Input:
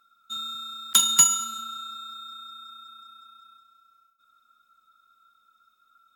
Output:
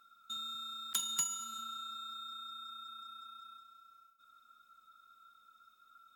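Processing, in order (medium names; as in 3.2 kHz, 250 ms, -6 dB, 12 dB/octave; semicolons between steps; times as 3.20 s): compression 2:1, threshold -47 dBFS, peak gain reduction 18.5 dB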